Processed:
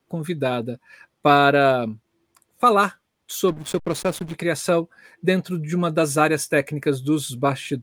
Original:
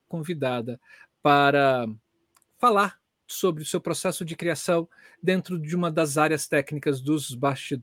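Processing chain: band-stop 2.9 kHz, Q 14; 3.48–4.34 s: hysteresis with a dead band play -28.5 dBFS; trim +3.5 dB

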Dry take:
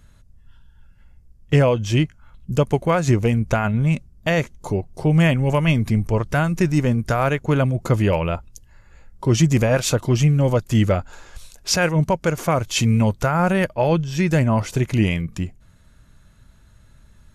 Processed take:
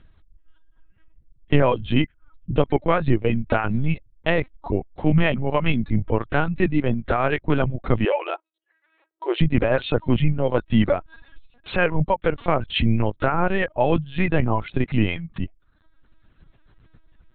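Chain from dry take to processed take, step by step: reverb removal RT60 0.91 s; LPC vocoder at 8 kHz pitch kept; 8.05–9.41 s: brick-wall FIR high-pass 320 Hz

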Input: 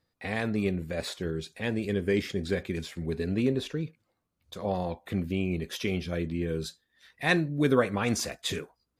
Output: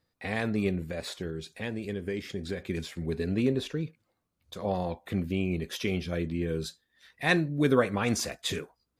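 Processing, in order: 0.84–2.66 s: compression 3:1, threshold -32 dBFS, peak gain reduction 8 dB

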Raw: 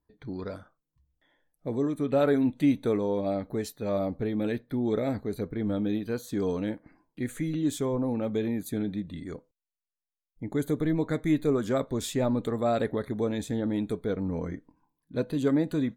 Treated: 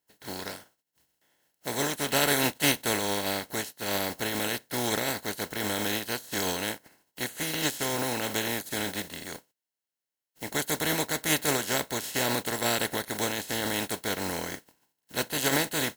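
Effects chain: spectral contrast reduction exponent 0.27; comb of notches 1.2 kHz

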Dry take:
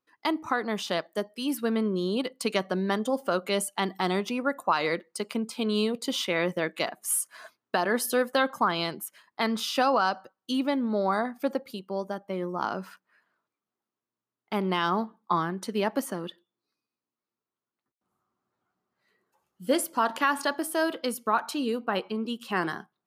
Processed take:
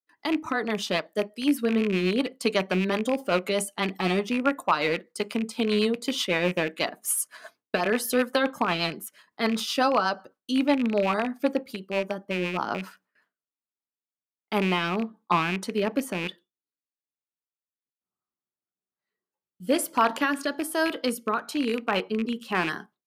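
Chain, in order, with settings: rattle on loud lows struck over -37 dBFS, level -23 dBFS; gate with hold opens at -54 dBFS; rotary cabinet horn 8 Hz, later 1.1 Hz, at 12.65 s; on a send: reverberation, pre-delay 3 ms, DRR 15 dB; on the sum: trim +4 dB

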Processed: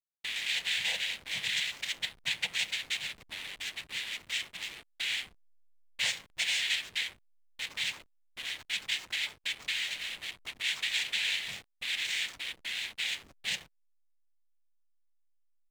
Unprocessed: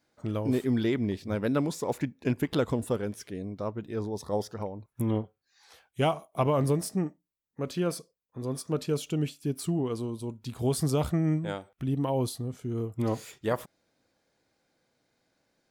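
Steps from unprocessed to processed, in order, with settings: four frequency bands reordered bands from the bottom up 2413; noise-vocoded speech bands 6; elliptic band-stop 210–480 Hz; feedback delay 68 ms, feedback 34%, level -21 dB; on a send at -11 dB: reverberation RT60 0.95 s, pre-delay 5 ms; on the sum: hysteresis with a dead band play -33.5 dBFS; in parallel at +1.5 dB: compression, threshold -41 dBFS, peak gain reduction 19 dB; on the sum: trim -7 dB

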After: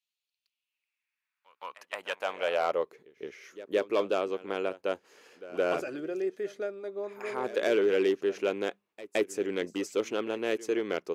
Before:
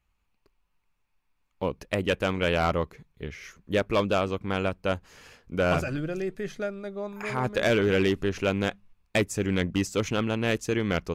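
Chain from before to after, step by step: pre-echo 168 ms -17 dB; high-pass sweep 3.7 kHz -> 380 Hz, 0.36–3.01 s; trim -7 dB

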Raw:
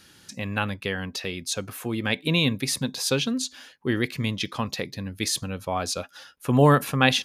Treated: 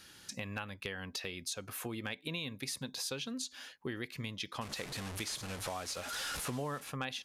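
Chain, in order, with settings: 4.61–6.90 s: one-bit delta coder 64 kbps, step -28 dBFS; peaking EQ 170 Hz -5 dB 2.8 oct; compression 6:1, threshold -35 dBFS, peak gain reduction 18.5 dB; overload inside the chain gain 23 dB; trim -2 dB

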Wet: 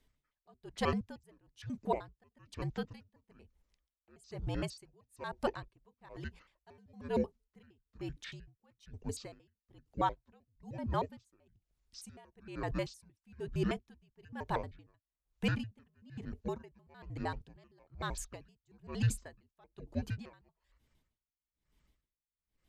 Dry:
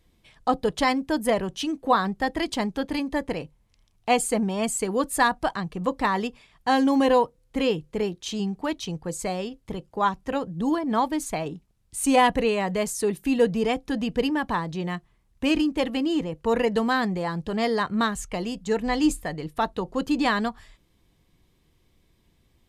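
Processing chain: pitch shift switched off and on -9 st, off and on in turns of 77 ms; frequency shift -67 Hz; logarithmic tremolo 1.1 Hz, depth 34 dB; trim -7.5 dB

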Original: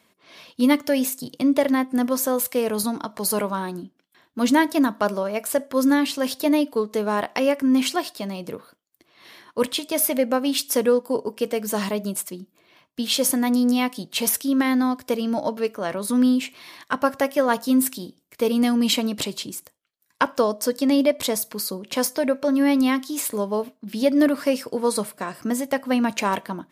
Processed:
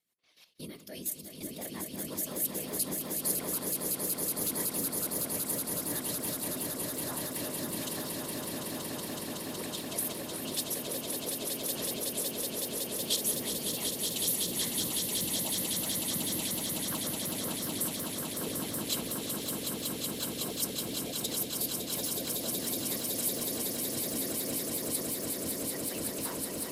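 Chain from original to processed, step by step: pre-emphasis filter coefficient 0.8; de-hum 49.53 Hz, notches 5; dynamic bell 3.7 kHz, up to +6 dB, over -57 dBFS, Q 7.2; level held to a coarse grid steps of 13 dB; whisper effect; rotary cabinet horn 6 Hz; echo with a slow build-up 186 ms, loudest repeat 8, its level -5 dB; modulated delay 360 ms, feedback 50%, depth 209 cents, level -16.5 dB; trim -2 dB

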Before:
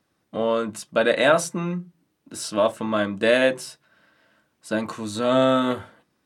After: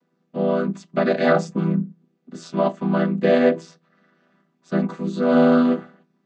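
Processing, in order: vocoder on a held chord minor triad, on E3; trim +3.5 dB

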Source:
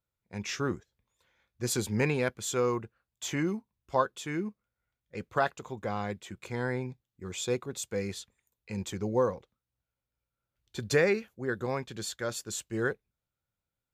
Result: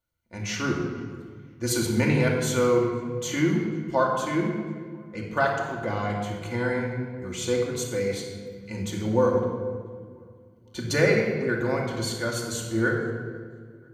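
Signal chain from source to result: rippled EQ curve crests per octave 1.9, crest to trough 7 dB; tape echo 496 ms, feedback 44%, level -23.5 dB, low-pass 2.2 kHz; simulated room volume 2200 m³, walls mixed, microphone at 2.5 m; trim +1.5 dB

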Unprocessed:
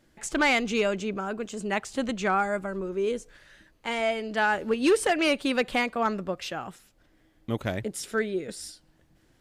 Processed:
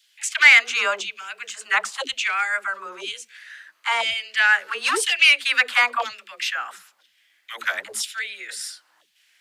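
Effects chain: LFO high-pass saw down 1 Hz 980–3400 Hz; phase dispersion lows, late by 140 ms, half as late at 310 Hz; trim +7.5 dB

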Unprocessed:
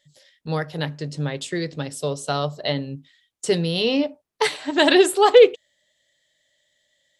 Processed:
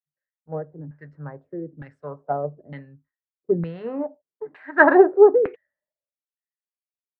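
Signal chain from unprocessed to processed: LFO low-pass saw down 1.1 Hz 240–2800 Hz; resonant high shelf 2.3 kHz -11.5 dB, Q 3; three bands expanded up and down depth 100%; trim -8.5 dB

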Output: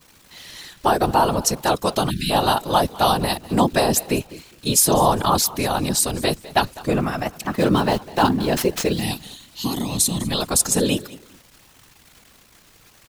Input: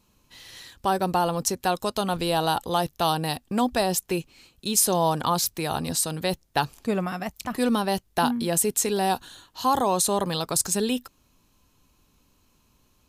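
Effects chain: 7.42–9.02 s: median filter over 5 samples; 8.92–10.32 s: time-frequency box 300–1800 Hz -17 dB; crackle 500 per s -42 dBFS; on a send: feedback delay 202 ms, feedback 25%, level -19.5 dB; 2.09–2.31 s: on the sum: spectral selection erased 270–1500 Hz; whisper effect; trim +5.5 dB

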